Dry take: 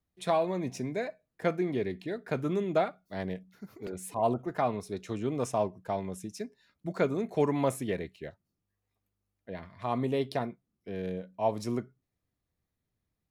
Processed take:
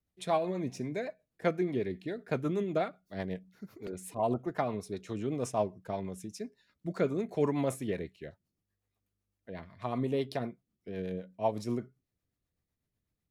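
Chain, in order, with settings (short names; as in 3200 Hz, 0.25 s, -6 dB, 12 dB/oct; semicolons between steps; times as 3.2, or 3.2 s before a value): rotary speaker horn 8 Hz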